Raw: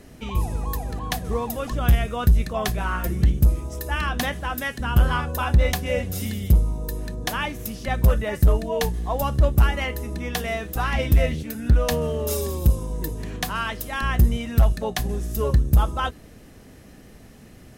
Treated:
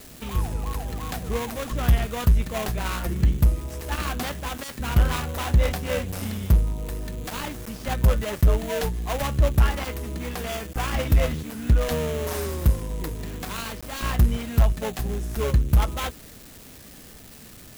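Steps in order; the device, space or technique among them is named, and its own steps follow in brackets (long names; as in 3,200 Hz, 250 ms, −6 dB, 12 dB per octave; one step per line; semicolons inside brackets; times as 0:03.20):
budget class-D amplifier (gap after every zero crossing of 0.28 ms; spike at every zero crossing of −25.5 dBFS)
0:10.50–0:10.94: notch filter 3,900 Hz, Q 11
level −1.5 dB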